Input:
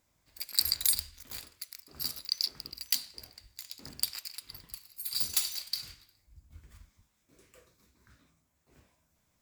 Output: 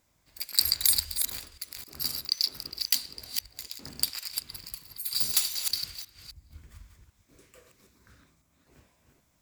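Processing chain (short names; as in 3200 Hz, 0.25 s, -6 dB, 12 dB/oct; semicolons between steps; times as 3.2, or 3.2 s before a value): reverse delay 0.263 s, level -6 dB; gain +3.5 dB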